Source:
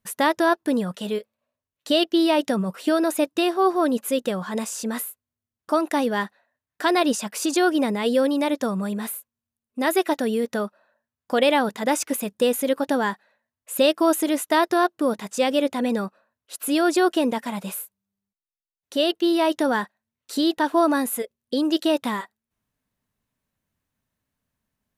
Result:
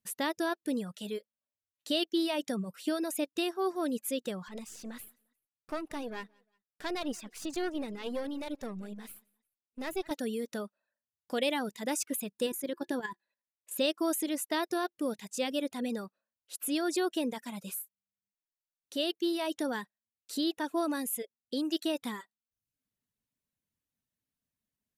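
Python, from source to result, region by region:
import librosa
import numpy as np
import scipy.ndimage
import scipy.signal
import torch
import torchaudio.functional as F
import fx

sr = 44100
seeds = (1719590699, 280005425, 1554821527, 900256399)

y = fx.chain(x, sr, fx.halfwave_gain(db=-12.0),
    fx.high_shelf(hz=5400.0, db=-9.0),
    fx.echo_feedback(ms=176, feedback_pct=26, wet_db=-18.0), at=(4.48, 10.11))
y = fx.chain(y, sr, fx.highpass(hz=44.0, slope=12),
    fx.level_steps(step_db=11),
    fx.small_body(hz=(350.0, 1000.0, 1700.0), ring_ms=100, db=13), at=(12.46, 13.78))
y = fx.peak_eq(y, sr, hz=1000.0, db=-9.0, octaves=2.3)
y = fx.dereverb_blind(y, sr, rt60_s=0.56)
y = fx.low_shelf(y, sr, hz=130.0, db=-9.5)
y = F.gain(torch.from_numpy(y), -5.5).numpy()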